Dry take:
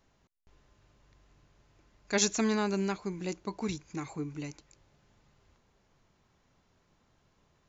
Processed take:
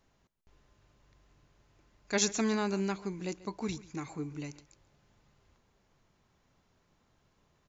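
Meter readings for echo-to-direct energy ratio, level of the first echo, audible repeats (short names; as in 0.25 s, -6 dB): -19.0 dB, -19.0 dB, 1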